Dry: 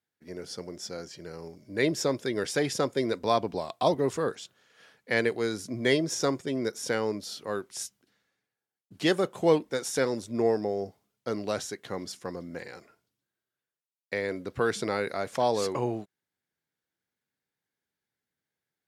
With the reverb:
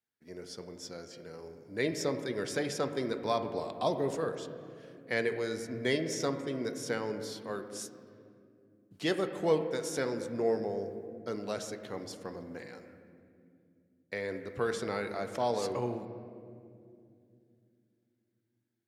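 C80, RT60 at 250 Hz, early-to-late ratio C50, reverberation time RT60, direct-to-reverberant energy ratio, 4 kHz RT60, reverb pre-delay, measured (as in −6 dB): 10.0 dB, 4.1 s, 9.0 dB, 2.5 s, 7.0 dB, 1.5 s, 4 ms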